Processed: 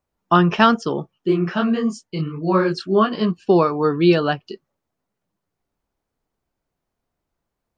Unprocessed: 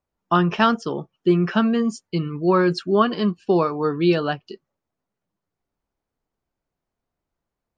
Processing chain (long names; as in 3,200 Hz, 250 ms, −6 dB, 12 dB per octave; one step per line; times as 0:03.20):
0:01.13–0:03.30: micro pitch shift up and down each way 59 cents → 42 cents
level +3.5 dB